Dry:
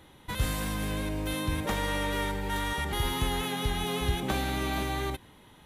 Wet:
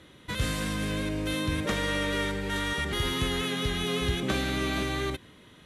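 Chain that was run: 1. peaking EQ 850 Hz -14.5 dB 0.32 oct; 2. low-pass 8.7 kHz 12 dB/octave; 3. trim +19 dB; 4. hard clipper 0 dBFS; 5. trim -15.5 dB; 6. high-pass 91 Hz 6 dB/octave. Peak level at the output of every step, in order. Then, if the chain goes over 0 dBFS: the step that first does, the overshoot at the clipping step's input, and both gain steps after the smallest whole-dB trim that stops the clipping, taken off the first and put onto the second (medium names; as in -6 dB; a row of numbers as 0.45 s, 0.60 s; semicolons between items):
-15.5 dBFS, -16.0 dBFS, +3.0 dBFS, 0.0 dBFS, -15.5 dBFS, -14.5 dBFS; step 3, 3.0 dB; step 3 +16 dB, step 5 -12.5 dB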